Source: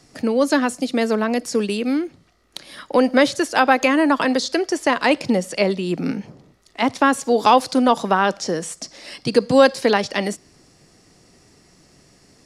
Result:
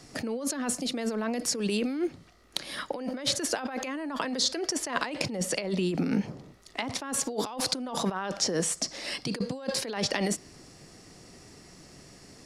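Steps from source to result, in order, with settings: compressor with a negative ratio -26 dBFS, ratio -1; trim -5 dB

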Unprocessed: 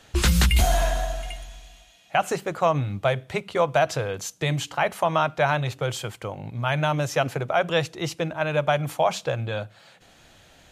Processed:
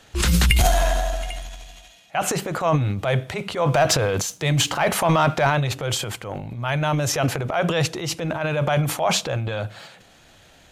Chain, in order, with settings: transient shaper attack -6 dB, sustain +10 dB; 3.66–5.47 s: waveshaping leveller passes 1; trim +1.5 dB

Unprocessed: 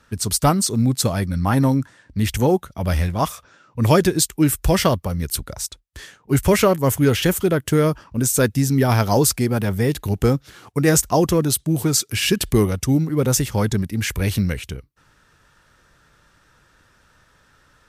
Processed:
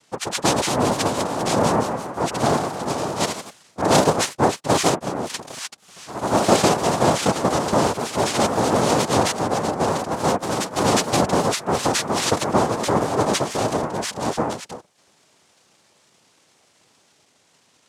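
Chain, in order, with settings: noise-vocoded speech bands 2; ever faster or slower copies 255 ms, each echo +1 st, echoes 3, each echo -6 dB; trim -2.5 dB

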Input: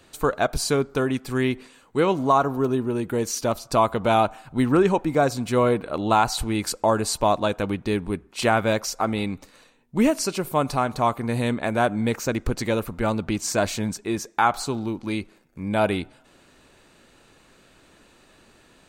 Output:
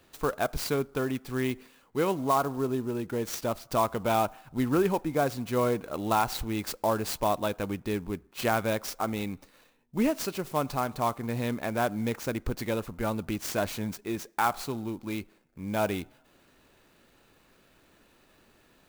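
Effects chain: sampling jitter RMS 0.027 ms; trim -6.5 dB

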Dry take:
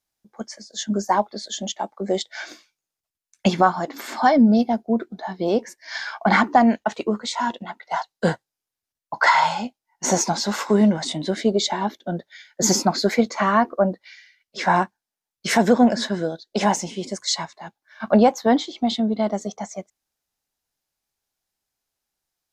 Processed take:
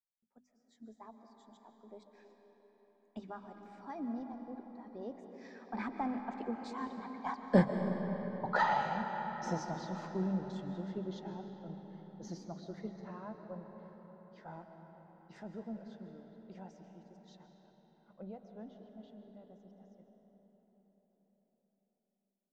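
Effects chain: Doppler pass-by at 7.91 s, 29 m/s, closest 2.4 m; low-pass 8.3 kHz; tilt EQ -3 dB/octave; hum notches 50/100/150/200/250 Hz; on a send: reverberation RT60 5.2 s, pre-delay 95 ms, DRR 5 dB; on the sum: trim +4.5 dB

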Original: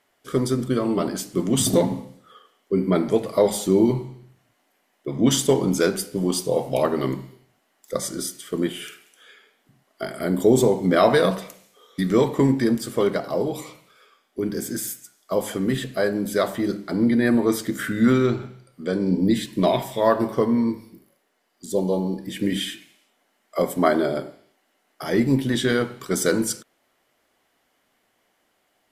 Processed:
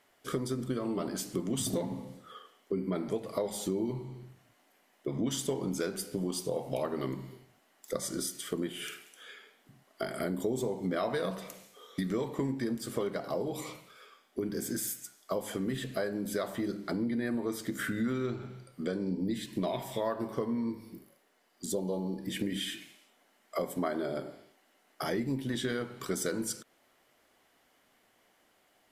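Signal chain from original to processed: compression 4:1, threshold -32 dBFS, peak gain reduction 17 dB

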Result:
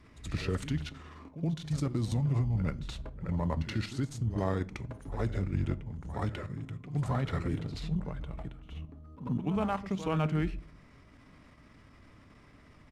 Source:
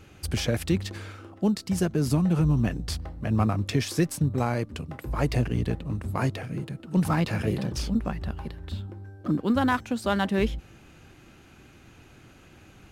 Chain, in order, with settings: treble shelf 6.4 kHz -6 dB; level held to a coarse grid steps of 9 dB; reverse echo 78 ms -12 dB; pitch shift -4 st; reverberation RT60 0.50 s, pre-delay 7 ms, DRR 16 dB; trim -2.5 dB

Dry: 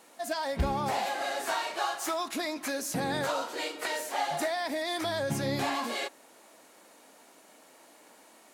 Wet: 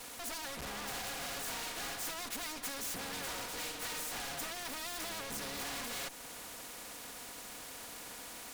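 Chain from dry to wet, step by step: comb filter that takes the minimum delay 4.1 ms; in parallel at +2 dB: compression, threshold -45 dBFS, peak gain reduction 19.5 dB; on the sum: hard clipper -32 dBFS, distortion -9 dB; spectrum-flattening compressor 2:1; trim +3.5 dB

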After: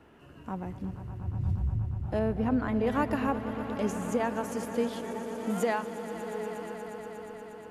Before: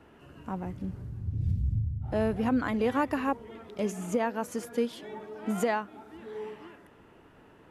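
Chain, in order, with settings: 2.19–2.87 s: treble shelf 2.5 kHz -10.5 dB; on a send: echo with a slow build-up 119 ms, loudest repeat 5, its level -15 dB; on the sum: trim -1 dB

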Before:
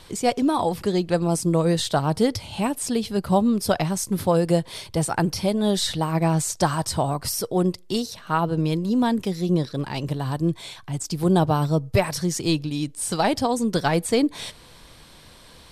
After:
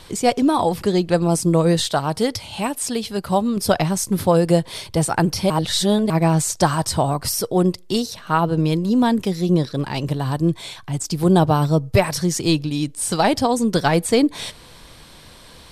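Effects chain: 1.86–3.57 s: bass shelf 490 Hz -6.5 dB; 5.50–6.10 s: reverse; trim +4 dB

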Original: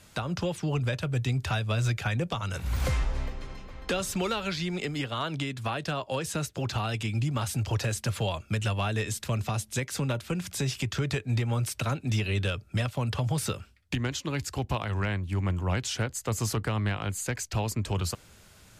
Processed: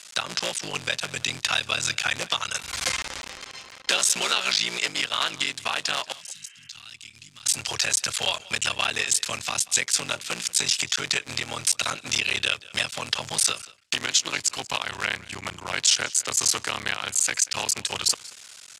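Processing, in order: cycle switcher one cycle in 3, muted; frequency weighting ITU-R 468; 6.15–6.66 s: spectral replace 260–3200 Hz after; 6.12–7.46 s: amplifier tone stack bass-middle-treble 6-0-2; delay 185 ms -21 dB; trim +4.5 dB

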